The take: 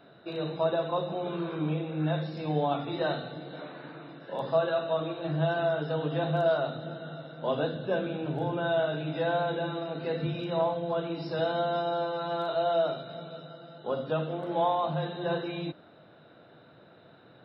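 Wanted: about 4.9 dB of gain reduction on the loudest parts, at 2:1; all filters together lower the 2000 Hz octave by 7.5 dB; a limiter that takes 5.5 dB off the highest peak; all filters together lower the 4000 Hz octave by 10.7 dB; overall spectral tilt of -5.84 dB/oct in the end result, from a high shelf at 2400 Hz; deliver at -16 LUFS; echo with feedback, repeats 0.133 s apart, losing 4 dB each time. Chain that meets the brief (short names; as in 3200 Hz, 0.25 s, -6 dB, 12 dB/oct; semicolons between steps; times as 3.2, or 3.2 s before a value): bell 2000 Hz -7.5 dB; high shelf 2400 Hz -7.5 dB; bell 4000 Hz -4 dB; compressor 2:1, threshold -31 dBFS; limiter -26 dBFS; feedback echo 0.133 s, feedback 63%, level -4 dB; gain +17.5 dB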